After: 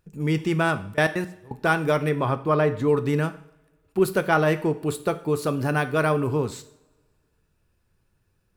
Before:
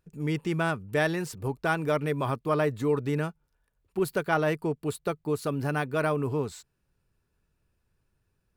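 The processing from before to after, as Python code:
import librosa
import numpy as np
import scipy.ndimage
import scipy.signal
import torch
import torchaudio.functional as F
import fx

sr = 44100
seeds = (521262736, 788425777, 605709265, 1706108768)

y = fx.step_gate(x, sr, bpm=169, pattern='.x.x.x..', floor_db=-24.0, edge_ms=4.5, at=(0.92, 1.54), fade=0.02)
y = fx.lowpass(y, sr, hz=2900.0, slope=6, at=(2.09, 2.88))
y = fx.rev_double_slope(y, sr, seeds[0], early_s=0.53, late_s=1.7, knee_db=-21, drr_db=10.0)
y = y * librosa.db_to_amplitude(5.0)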